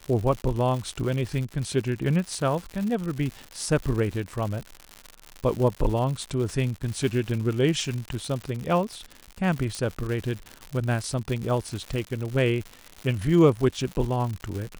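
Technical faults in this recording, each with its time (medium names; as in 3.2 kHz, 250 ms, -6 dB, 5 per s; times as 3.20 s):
crackle 160 per s -30 dBFS
9.75 s: pop -18 dBFS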